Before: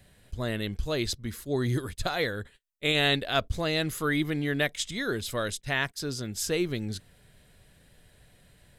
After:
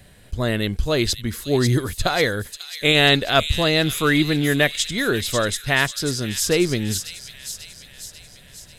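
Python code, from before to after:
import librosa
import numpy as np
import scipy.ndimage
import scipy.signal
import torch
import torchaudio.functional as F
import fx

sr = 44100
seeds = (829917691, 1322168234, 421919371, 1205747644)

y = fx.echo_wet_highpass(x, sr, ms=542, feedback_pct=57, hz=4000.0, wet_db=-4)
y = F.gain(torch.from_numpy(y), 9.0).numpy()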